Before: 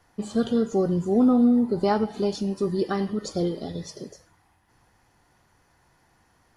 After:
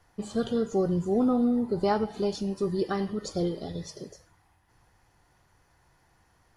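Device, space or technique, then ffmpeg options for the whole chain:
low shelf boost with a cut just above: -af "lowshelf=f=95:g=5.5,equalizer=f=240:t=o:w=0.54:g=-4.5,volume=-2.5dB"

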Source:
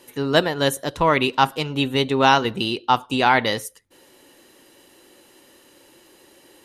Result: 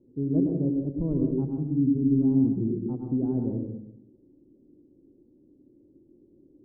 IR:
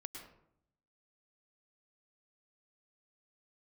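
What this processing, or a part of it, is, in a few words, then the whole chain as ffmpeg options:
next room: -filter_complex "[0:a]asettb=1/sr,asplit=3[a][b][c];[a]atrim=end=1.494[d];[b]atrim=start=1.49:end=2.56,asetpts=PTS-STARTPTS,afade=t=in:d=0.004:c=qsin,afade=t=out:st=1.066:d=0.004:c=qsin,equalizer=f=250:t=o:w=1:g=5,equalizer=f=500:t=o:w=1:g=-11,equalizer=f=2k:t=o:w=1:g=-11[e];[c]atrim=start=2.556[f];[d][e]acrossfade=d=0.004:c1=hsin:c2=qsin[g];[g][f]acrossfade=d=0.004:c1=qsin:c2=hsin,lowpass=f=320:w=0.5412,lowpass=f=320:w=1.3066[h];[1:a]atrim=start_sample=2205[i];[h][i]afir=irnorm=-1:irlink=0,volume=4.5dB"

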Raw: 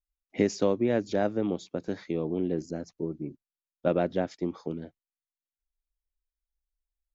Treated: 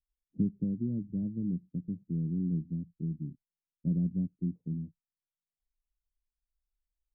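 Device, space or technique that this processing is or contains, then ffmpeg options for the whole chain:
the neighbour's flat through the wall: -af "lowpass=f=220:w=0.5412,lowpass=f=220:w=1.3066,equalizer=f=170:t=o:w=0.45:g=7"

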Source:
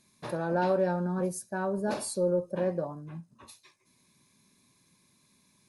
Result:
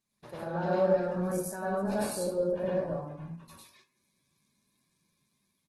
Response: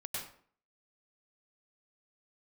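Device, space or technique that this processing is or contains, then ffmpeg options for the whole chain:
speakerphone in a meeting room: -filter_complex "[0:a]asettb=1/sr,asplit=3[a][b][c];[a]atrim=end=1.834[d];[b]atrim=start=1.83:end=2.63,asetpts=PTS-STARTPTS,afade=t=in:d=0.004:c=qsin,afade=t=out:st=0.796:d=0.004:c=qsin,adynamicequalizer=threshold=0.00891:dfrequency=360:dqfactor=1.8:tfrequency=360:tqfactor=1.8:attack=5:release=100:ratio=0.375:range=2:mode=cutabove:tftype=bell[e];[c]atrim=start=2.626[f];[d][e]acrossfade=d=0.004:c1=hsin:c2=qsin[g];[g][f]acrossfade=d=0.004:c1=qsin:c2=hsin[h];[1:a]atrim=start_sample=2205[i];[h][i]afir=irnorm=-1:irlink=0,asplit=2[j][k];[k]adelay=200,highpass=300,lowpass=3.4k,asoftclip=type=hard:threshold=-23dB,volume=-16dB[l];[j][l]amix=inputs=2:normalize=0,dynaudnorm=f=180:g=7:m=3.5dB,agate=range=-8dB:threshold=-56dB:ratio=16:detection=peak,volume=-4.5dB" -ar 48000 -c:a libopus -b:a 16k

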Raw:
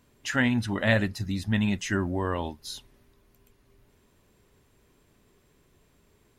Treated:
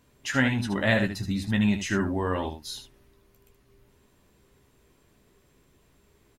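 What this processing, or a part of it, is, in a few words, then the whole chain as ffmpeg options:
slapback doubling: -filter_complex "[0:a]asplit=3[a][b][c];[b]adelay=15,volume=-8dB[d];[c]adelay=76,volume=-8.5dB[e];[a][d][e]amix=inputs=3:normalize=0"

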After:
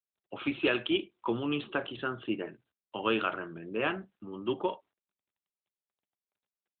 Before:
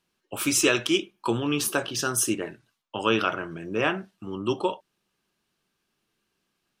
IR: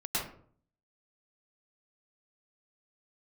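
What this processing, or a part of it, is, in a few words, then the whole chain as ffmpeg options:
mobile call with aggressive noise cancelling: -filter_complex "[0:a]asplit=3[a][b][c];[a]afade=t=out:st=3.06:d=0.02[d];[b]lowshelf=f=74:g=-4.5,afade=t=in:st=3.06:d=0.02,afade=t=out:st=4.45:d=0.02[e];[c]afade=t=in:st=4.45:d=0.02[f];[d][e][f]amix=inputs=3:normalize=0,highpass=130,afftdn=nr=20:nf=-48,volume=-5dB" -ar 8000 -c:a libopencore_amrnb -b:a 12200

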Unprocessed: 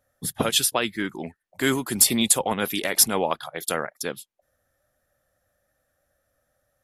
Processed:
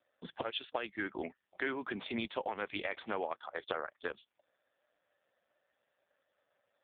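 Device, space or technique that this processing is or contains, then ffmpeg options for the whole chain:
voicemail: -af "highpass=360,lowpass=3.2k,acompressor=threshold=-31dB:ratio=10" -ar 8000 -c:a libopencore_amrnb -b:a 5150

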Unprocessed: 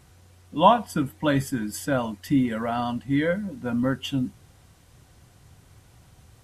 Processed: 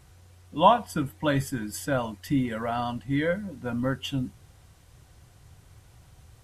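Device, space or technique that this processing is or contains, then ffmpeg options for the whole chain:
low shelf boost with a cut just above: -af "lowshelf=f=89:g=5,equalizer=f=230:t=o:w=0.83:g=-4.5,volume=-1.5dB"

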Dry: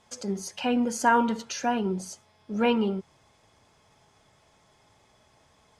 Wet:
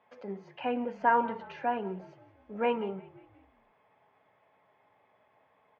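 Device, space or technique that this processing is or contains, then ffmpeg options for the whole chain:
bass cabinet: -filter_complex "[0:a]highpass=210,highpass=62,equalizer=f=150:t=q:w=4:g=-5,equalizer=f=220:t=q:w=4:g=-7,equalizer=f=340:t=q:w=4:g=-8,equalizer=f=1.4k:t=q:w=4:g=-5,lowpass=f=2.3k:w=0.5412,lowpass=f=2.3k:w=1.3066,asplit=5[a][b][c][d][e];[b]adelay=177,afreqshift=-41,volume=-19.5dB[f];[c]adelay=354,afreqshift=-82,volume=-25.5dB[g];[d]adelay=531,afreqshift=-123,volume=-31.5dB[h];[e]adelay=708,afreqshift=-164,volume=-37.6dB[i];[a][f][g][h][i]amix=inputs=5:normalize=0,volume=-2dB"

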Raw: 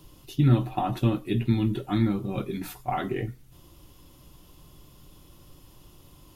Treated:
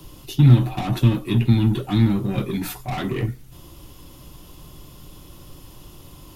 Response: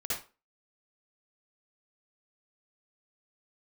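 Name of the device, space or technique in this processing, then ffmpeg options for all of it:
one-band saturation: -filter_complex "[0:a]acrossover=split=240|2500[a][b][c];[b]asoftclip=type=tanh:threshold=-37.5dB[d];[a][d][c]amix=inputs=3:normalize=0,volume=9dB"

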